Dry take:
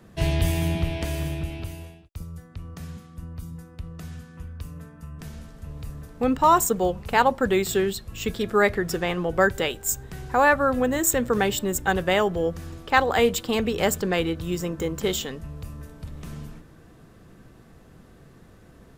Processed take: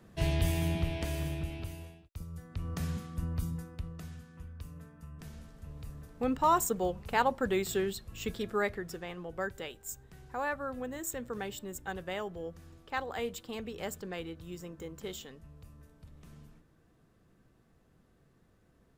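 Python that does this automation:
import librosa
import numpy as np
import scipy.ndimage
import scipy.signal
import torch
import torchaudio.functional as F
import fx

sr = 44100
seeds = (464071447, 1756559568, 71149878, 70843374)

y = fx.gain(x, sr, db=fx.line((2.27, -6.5), (2.74, 2.5), (3.42, 2.5), (4.17, -8.5), (8.35, -8.5), (9.04, -16.0)))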